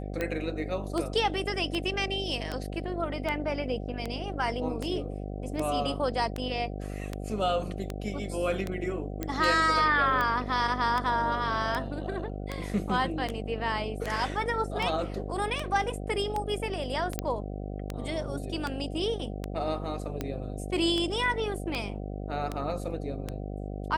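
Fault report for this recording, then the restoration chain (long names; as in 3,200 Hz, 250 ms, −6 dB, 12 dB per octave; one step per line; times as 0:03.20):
mains buzz 50 Hz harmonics 15 −36 dBFS
scratch tick 78 rpm −17 dBFS
0:09.23: click −17 dBFS
0:17.19: click −12 dBFS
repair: click removal
hum removal 50 Hz, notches 15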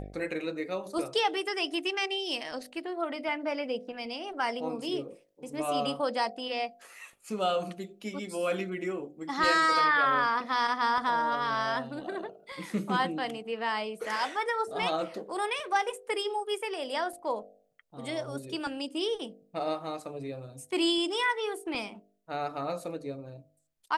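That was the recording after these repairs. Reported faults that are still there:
none of them is left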